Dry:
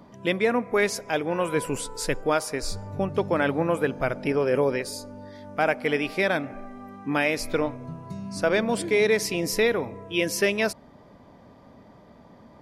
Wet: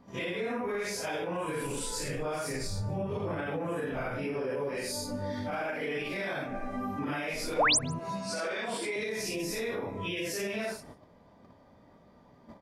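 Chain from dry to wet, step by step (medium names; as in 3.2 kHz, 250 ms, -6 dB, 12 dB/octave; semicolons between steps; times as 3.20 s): phase randomisation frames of 200 ms; 7.99–8.96 s: frequency weighting A; gate -47 dBFS, range -15 dB; 2.03–3.47 s: peaking EQ 120 Hz +9.5 dB 1 oct; compression 5:1, threshold -38 dBFS, peak gain reduction 19 dB; peak limiter -33.5 dBFS, peak gain reduction 6.5 dB; 7.58–7.79 s: painted sound rise 420–11000 Hz -32 dBFS; delay 149 ms -23.5 dB; trim +8 dB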